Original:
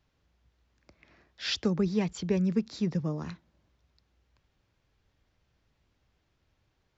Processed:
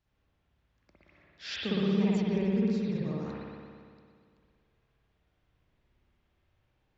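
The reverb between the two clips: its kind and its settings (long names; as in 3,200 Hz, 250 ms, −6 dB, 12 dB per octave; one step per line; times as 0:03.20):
spring reverb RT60 2.1 s, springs 57 ms, chirp 70 ms, DRR −7.5 dB
level −8.5 dB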